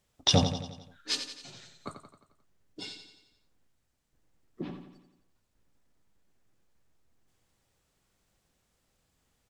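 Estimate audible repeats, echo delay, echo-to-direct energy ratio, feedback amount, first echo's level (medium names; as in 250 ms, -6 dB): 5, 88 ms, -7.5 dB, 54%, -9.0 dB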